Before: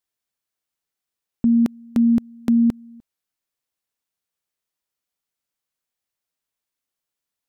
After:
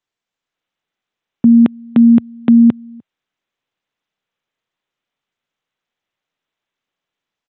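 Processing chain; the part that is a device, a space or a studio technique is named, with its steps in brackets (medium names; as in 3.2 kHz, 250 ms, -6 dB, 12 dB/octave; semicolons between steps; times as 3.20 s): Bluetooth headset (high-pass 100 Hz 24 dB/octave; level rider gain up to 4.5 dB; resampled via 8 kHz; trim +4 dB; SBC 64 kbps 16 kHz)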